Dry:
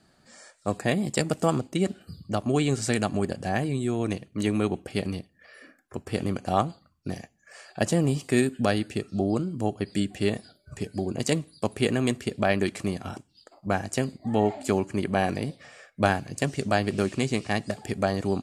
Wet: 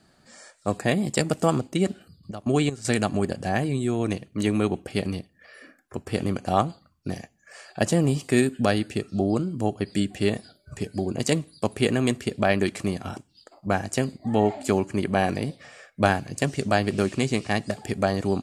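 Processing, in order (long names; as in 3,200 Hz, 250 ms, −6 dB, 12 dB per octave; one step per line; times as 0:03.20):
0:01.90–0:02.95: gate pattern "x..x..xxx..xx" 195 BPM −12 dB
level +2 dB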